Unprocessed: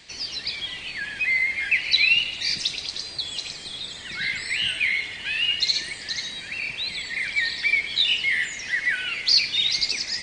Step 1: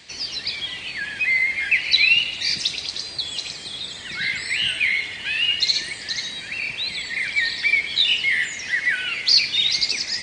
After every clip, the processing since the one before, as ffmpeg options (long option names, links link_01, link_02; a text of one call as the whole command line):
ffmpeg -i in.wav -af "highpass=53,volume=2.5dB" out.wav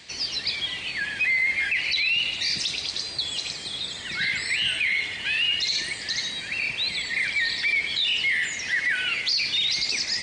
ffmpeg -i in.wav -af "alimiter=limit=-16.5dB:level=0:latency=1:release=18" out.wav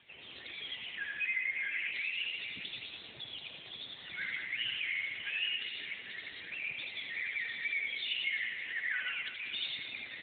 ffmpeg -i in.wav -af "flanger=delay=1.3:depth=1.5:regen=-28:speed=1.2:shape=sinusoidal,aecho=1:1:80|192|348.8|568.3|875.6:0.631|0.398|0.251|0.158|0.1,volume=-8dB" -ar 8000 -c:a libopencore_amrnb -b:a 7950 out.amr